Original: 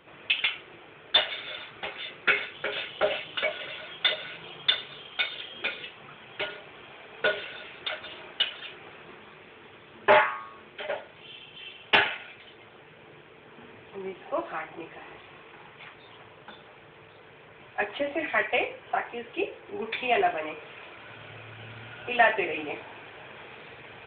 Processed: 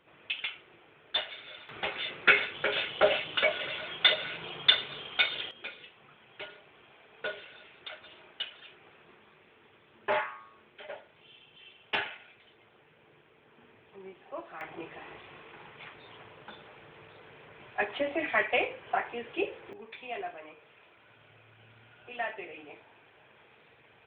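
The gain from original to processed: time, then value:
-9 dB
from 1.69 s +2 dB
from 5.51 s -10.5 dB
from 14.61 s -1.5 dB
from 19.73 s -14 dB

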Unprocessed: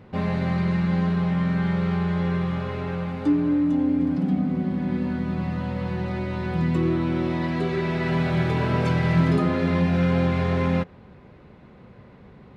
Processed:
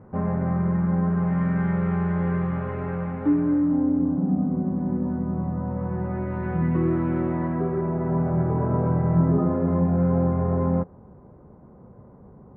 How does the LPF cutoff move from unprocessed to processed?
LPF 24 dB/oct
1.03 s 1400 Hz
1.43 s 1900 Hz
3.38 s 1900 Hz
4.15 s 1100 Hz
5.57 s 1100 Hz
6.48 s 1800 Hz
7.17 s 1800 Hz
7.94 s 1100 Hz

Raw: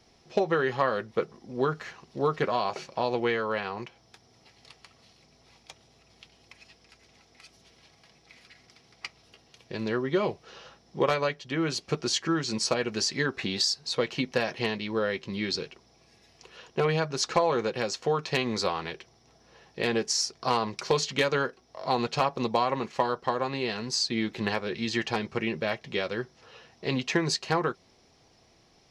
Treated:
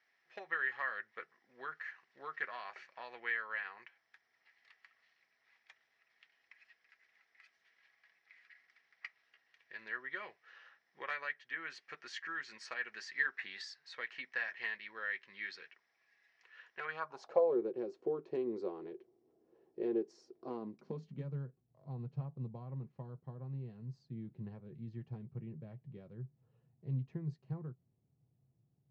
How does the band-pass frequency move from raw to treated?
band-pass, Q 5.5
16.81 s 1800 Hz
17.57 s 360 Hz
20.4 s 360 Hz
21.38 s 130 Hz

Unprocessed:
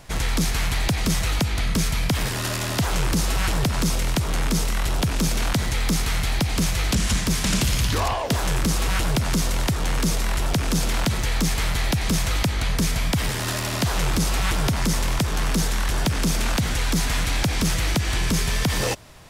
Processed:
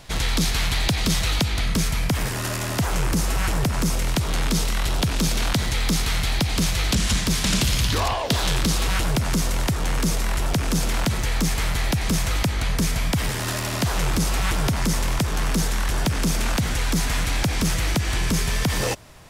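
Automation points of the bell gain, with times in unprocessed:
bell 3800 Hz 0.92 oct
1.41 s +5.5 dB
2.14 s -4 dB
3.89 s -4 dB
4.3 s +3.5 dB
8.16 s +3.5 dB
8.44 s +9.5 dB
9.14 s -1.5 dB

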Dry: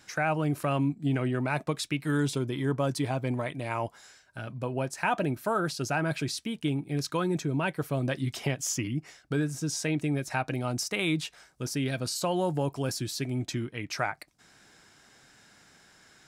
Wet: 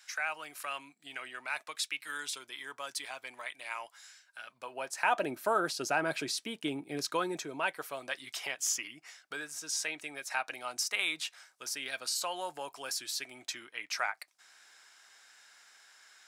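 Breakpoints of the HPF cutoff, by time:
4.41 s 1500 Hz
5.35 s 380 Hz
7.03 s 380 Hz
8.1 s 1000 Hz

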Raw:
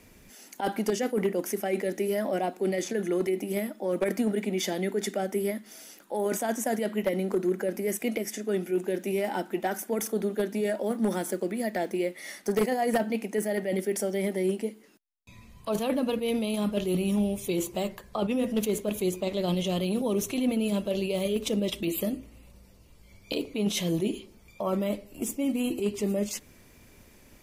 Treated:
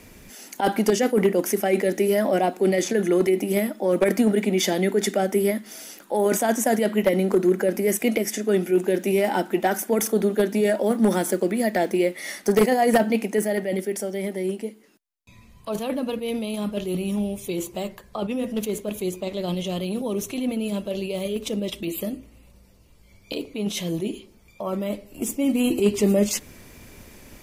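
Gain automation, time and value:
13.21 s +7.5 dB
14.03 s +0.5 dB
24.76 s +0.5 dB
25.86 s +9 dB

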